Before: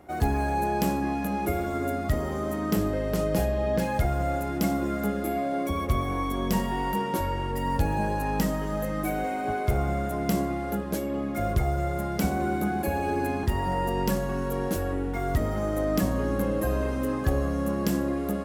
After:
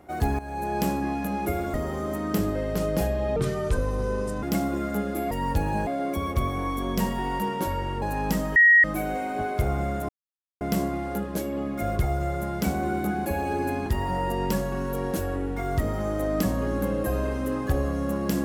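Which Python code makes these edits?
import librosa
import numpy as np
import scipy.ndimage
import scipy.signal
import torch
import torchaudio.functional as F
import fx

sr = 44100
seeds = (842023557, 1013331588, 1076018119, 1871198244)

y = fx.edit(x, sr, fx.fade_in_from(start_s=0.39, length_s=0.41, floor_db=-14.5),
    fx.cut(start_s=1.74, length_s=0.38),
    fx.speed_span(start_s=3.74, length_s=0.78, speed=0.73),
    fx.move(start_s=7.55, length_s=0.56, to_s=5.4),
    fx.bleep(start_s=8.65, length_s=0.28, hz=1890.0, db=-12.0),
    fx.insert_silence(at_s=10.18, length_s=0.52), tone=tone)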